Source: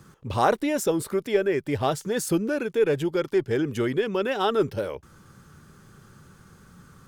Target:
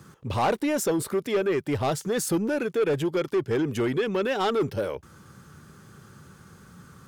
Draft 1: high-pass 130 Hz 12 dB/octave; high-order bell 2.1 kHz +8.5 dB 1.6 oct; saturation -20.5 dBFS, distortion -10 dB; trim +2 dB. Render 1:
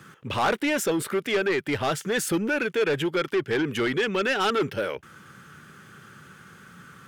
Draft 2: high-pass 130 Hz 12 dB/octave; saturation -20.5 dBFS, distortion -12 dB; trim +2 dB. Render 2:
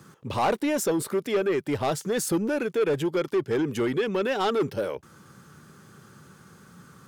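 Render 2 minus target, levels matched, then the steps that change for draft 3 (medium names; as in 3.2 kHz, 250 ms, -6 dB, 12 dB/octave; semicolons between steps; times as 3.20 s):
125 Hz band -2.5 dB
change: high-pass 60 Hz 12 dB/octave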